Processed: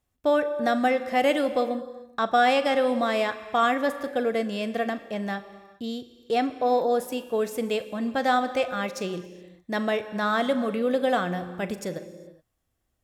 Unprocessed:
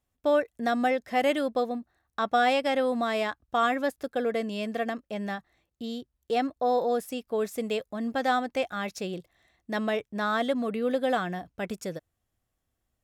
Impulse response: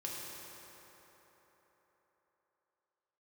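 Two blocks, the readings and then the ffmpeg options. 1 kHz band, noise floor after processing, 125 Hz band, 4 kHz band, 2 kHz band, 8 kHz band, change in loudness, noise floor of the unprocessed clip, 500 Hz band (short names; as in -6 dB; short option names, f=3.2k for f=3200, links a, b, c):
+3.0 dB, -76 dBFS, +3.5 dB, +3.0 dB, +3.0 dB, +3.0 dB, +3.0 dB, -81 dBFS, +3.0 dB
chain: -filter_complex "[0:a]asplit=2[a][b];[1:a]atrim=start_sample=2205,afade=t=out:st=0.44:d=0.01,atrim=end_sample=19845,adelay=40[c];[b][c]afir=irnorm=-1:irlink=0,volume=-11dB[d];[a][d]amix=inputs=2:normalize=0,volume=2.5dB"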